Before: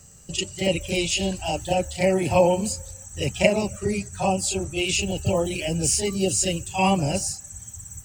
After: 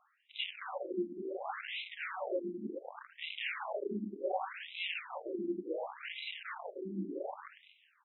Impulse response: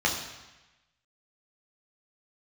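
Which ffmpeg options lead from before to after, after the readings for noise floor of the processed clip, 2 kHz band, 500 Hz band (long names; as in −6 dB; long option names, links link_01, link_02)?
−71 dBFS, −11.0 dB, −16.0 dB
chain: -filter_complex "[1:a]atrim=start_sample=2205,asetrate=27783,aresample=44100[link_01];[0:a][link_01]afir=irnorm=-1:irlink=0,areverse,acompressor=mode=upward:threshold=-21dB:ratio=2.5,areverse,aresample=11025,aresample=44100,acompressor=threshold=-18dB:ratio=2,aeval=exprs='1*(cos(1*acos(clip(val(0)/1,-1,1)))-cos(1*PI/2))+0.02*(cos(5*acos(clip(val(0)/1,-1,1)))-cos(5*PI/2))+0.178*(cos(7*acos(clip(val(0)/1,-1,1)))-cos(7*PI/2))':channel_layout=same,aresample=16000,asoftclip=type=tanh:threshold=-18.5dB,aresample=44100,afftfilt=real='re*between(b*sr/1024,260*pow(2900/260,0.5+0.5*sin(2*PI*0.68*pts/sr))/1.41,260*pow(2900/260,0.5+0.5*sin(2*PI*0.68*pts/sr))*1.41)':imag='im*between(b*sr/1024,260*pow(2900/260,0.5+0.5*sin(2*PI*0.68*pts/sr))/1.41,260*pow(2900/260,0.5+0.5*sin(2*PI*0.68*pts/sr))*1.41)':win_size=1024:overlap=0.75,volume=-4dB"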